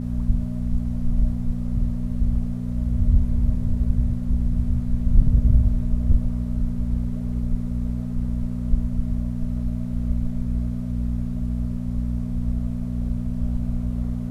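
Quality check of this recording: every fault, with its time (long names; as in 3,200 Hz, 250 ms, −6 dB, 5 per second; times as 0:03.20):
mains hum 60 Hz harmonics 4 −27 dBFS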